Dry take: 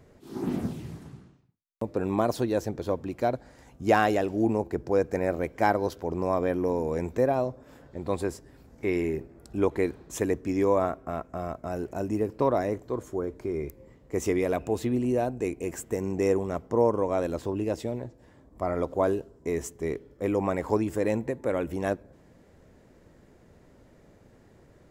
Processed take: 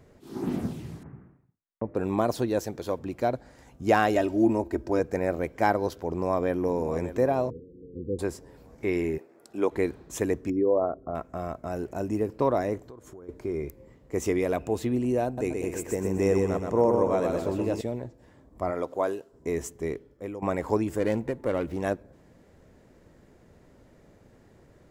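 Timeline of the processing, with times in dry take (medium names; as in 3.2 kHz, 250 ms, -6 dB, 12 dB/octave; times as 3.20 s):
1.03–1.95 s: steep low-pass 2.1 kHz
2.59–2.99 s: tilt EQ +1.5 dB/octave
4.15–5.00 s: comb 3.2 ms
6.04–7.00 s: echo throw 590 ms, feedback 40%, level -12.5 dB
7.50–8.19 s: Chebyshev low-pass 500 Hz, order 8
9.17–9.71 s: high-pass 520 Hz -> 230 Hz
10.50–11.15 s: resonances exaggerated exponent 2
12.87–13.29 s: compression 8:1, threshold -42 dBFS
15.25–17.81 s: feedback delay 125 ms, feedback 45%, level -4 dB
18.70–19.32 s: high-pass 270 Hz -> 770 Hz 6 dB/octave
19.83–20.42 s: fade out, to -15 dB
20.99–21.80 s: sliding maximum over 5 samples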